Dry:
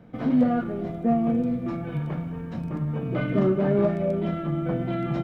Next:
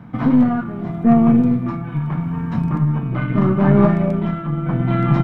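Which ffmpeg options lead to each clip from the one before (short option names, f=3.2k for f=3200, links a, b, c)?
-af "equalizer=f=125:t=o:w=1:g=9,equalizer=f=250:t=o:w=1:g=5,equalizer=f=500:t=o:w=1:g=-9,equalizer=f=1k:t=o:w=1:g=12,equalizer=f=2k:t=o:w=1:g=3,aeval=exprs='0.501*(cos(1*acos(clip(val(0)/0.501,-1,1)))-cos(1*PI/2))+0.0355*(cos(4*acos(clip(val(0)/0.501,-1,1)))-cos(4*PI/2))':c=same,tremolo=f=0.78:d=0.54,volume=5dB"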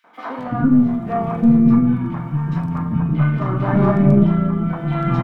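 -filter_complex "[0:a]acrossover=split=440|2400[a][b][c];[b]adelay=40[d];[a]adelay=380[e];[e][d][c]amix=inputs=3:normalize=0,volume=1dB"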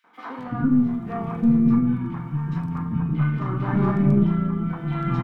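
-af "equalizer=f=620:t=o:w=0.38:g=-10,volume=-5dB"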